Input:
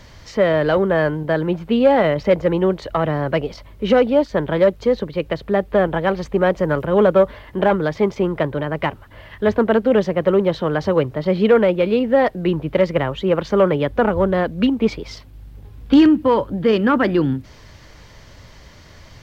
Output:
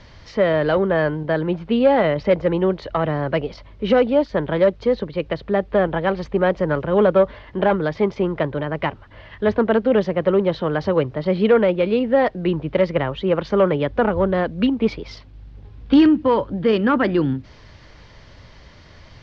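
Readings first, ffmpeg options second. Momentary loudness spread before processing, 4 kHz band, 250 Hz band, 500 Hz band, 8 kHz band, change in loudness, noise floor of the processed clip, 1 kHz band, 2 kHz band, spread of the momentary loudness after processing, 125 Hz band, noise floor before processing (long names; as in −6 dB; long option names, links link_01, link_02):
8 LU, −1.5 dB, −1.5 dB, −1.5 dB, can't be measured, −1.5 dB, −45 dBFS, −1.5 dB, −1.5 dB, 8 LU, −1.5 dB, −44 dBFS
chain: -af "lowpass=frequency=5300:width=0.5412,lowpass=frequency=5300:width=1.3066,volume=-1.5dB"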